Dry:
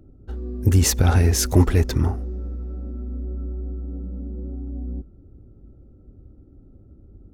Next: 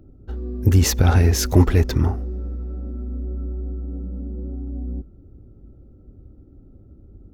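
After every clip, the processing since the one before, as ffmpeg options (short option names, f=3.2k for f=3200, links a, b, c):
-af "equalizer=f=9k:w=1.6:g=-8,volume=1.5dB"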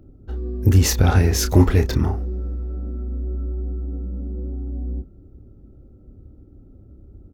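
-filter_complex "[0:a]asplit=2[a][b];[b]adelay=30,volume=-9dB[c];[a][c]amix=inputs=2:normalize=0"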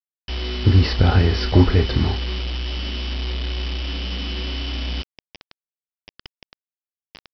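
-af "aeval=exprs='val(0)+0.0178*sin(2*PI*3000*n/s)':c=same,aresample=11025,acrusher=bits=4:mix=0:aa=0.000001,aresample=44100"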